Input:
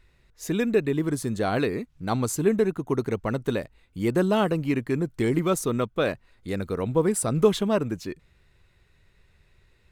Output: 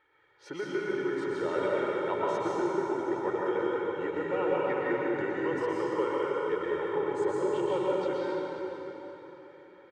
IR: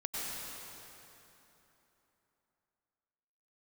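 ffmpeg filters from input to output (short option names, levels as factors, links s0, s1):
-filter_complex "[0:a]aecho=1:1:1.9:0.78,acompressor=threshold=0.0398:ratio=6,asetrate=38170,aresample=44100,atempo=1.15535,highpass=430,lowpass=2000[s0];[1:a]atrim=start_sample=2205,asetrate=36162,aresample=44100[s1];[s0][s1]afir=irnorm=-1:irlink=0,volume=1.26"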